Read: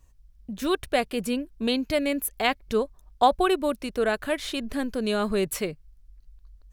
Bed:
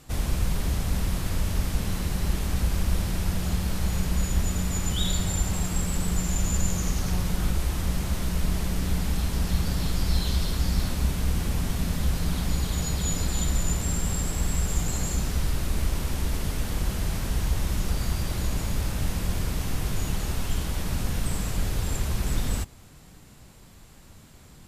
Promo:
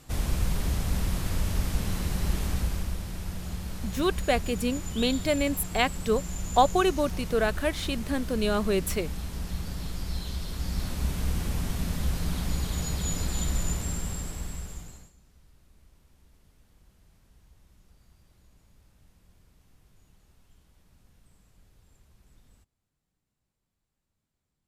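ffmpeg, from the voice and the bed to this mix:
-filter_complex "[0:a]adelay=3350,volume=-1dB[a];[1:a]volume=4dB,afade=t=out:st=2.46:d=0.51:silence=0.446684,afade=t=in:st=10.44:d=0.75:silence=0.530884,afade=t=out:st=13.64:d=1.48:silence=0.0316228[b];[a][b]amix=inputs=2:normalize=0"

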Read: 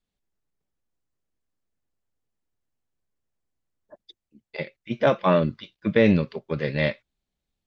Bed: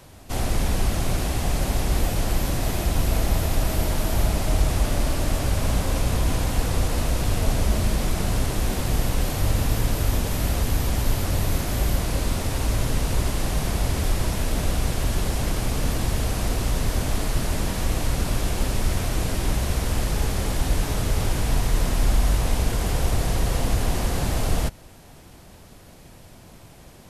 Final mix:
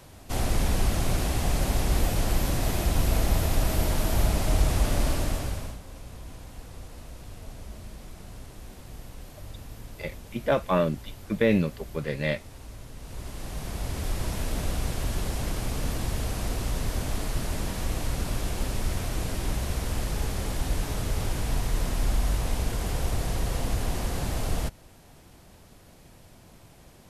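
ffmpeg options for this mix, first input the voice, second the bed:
-filter_complex "[0:a]adelay=5450,volume=-4dB[a];[1:a]volume=12.5dB,afade=t=out:st=5.1:d=0.68:silence=0.125893,afade=t=in:st=12.96:d=1.41:silence=0.188365[b];[a][b]amix=inputs=2:normalize=0"

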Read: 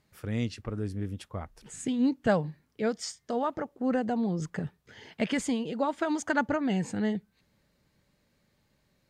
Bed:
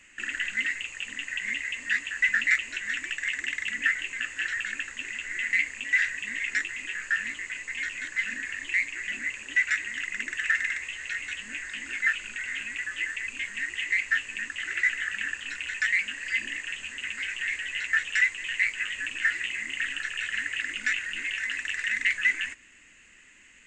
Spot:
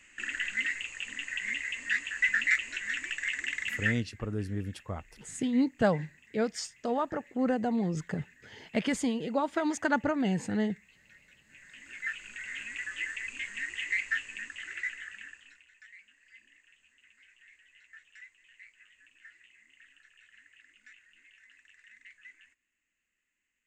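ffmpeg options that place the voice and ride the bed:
-filter_complex "[0:a]adelay=3550,volume=-0.5dB[a];[1:a]volume=18.5dB,afade=t=out:st=3.83:d=0.21:silence=0.0707946,afade=t=in:st=11.43:d=1.39:silence=0.0841395,afade=t=out:st=13.95:d=1.71:silence=0.0630957[b];[a][b]amix=inputs=2:normalize=0"

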